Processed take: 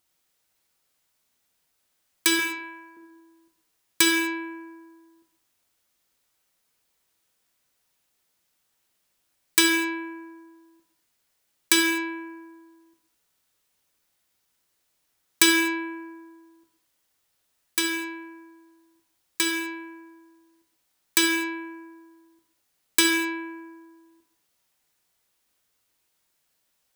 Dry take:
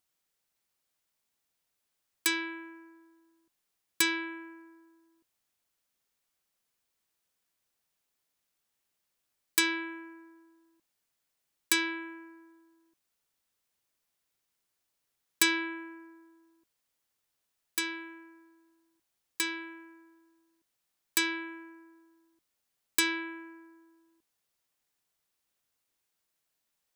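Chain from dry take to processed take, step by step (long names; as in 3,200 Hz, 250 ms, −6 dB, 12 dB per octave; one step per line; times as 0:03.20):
0:02.39–0:02.97: high-pass filter 430 Hz 24 dB per octave
reverb whose tail is shaped and stops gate 270 ms falling, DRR 2.5 dB
level +6.5 dB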